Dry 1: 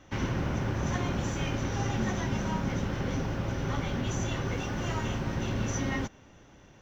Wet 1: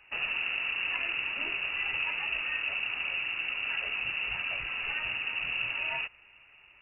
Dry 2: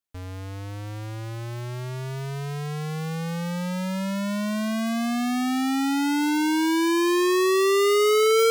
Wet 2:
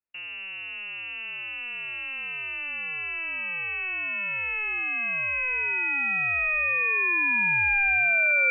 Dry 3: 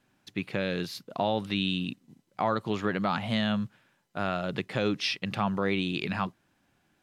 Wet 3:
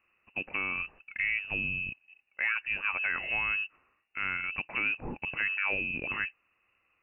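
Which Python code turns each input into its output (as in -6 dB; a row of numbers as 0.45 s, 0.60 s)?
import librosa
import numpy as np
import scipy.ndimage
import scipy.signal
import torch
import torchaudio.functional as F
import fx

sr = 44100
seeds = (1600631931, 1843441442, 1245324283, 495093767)

y = fx.freq_invert(x, sr, carrier_hz=2800)
y = y * librosa.db_to_amplitude(-3.0)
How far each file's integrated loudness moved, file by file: +1.5 LU, -0.5 LU, -0.5 LU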